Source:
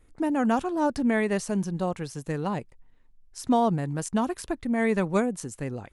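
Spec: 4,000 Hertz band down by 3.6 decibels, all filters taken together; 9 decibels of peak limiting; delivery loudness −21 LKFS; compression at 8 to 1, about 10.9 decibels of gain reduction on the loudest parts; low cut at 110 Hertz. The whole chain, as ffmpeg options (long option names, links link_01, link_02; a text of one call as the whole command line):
ffmpeg -i in.wav -af "highpass=110,equalizer=frequency=4000:width_type=o:gain=-5,acompressor=threshold=-30dB:ratio=8,volume=17dB,alimiter=limit=-12.5dB:level=0:latency=1" out.wav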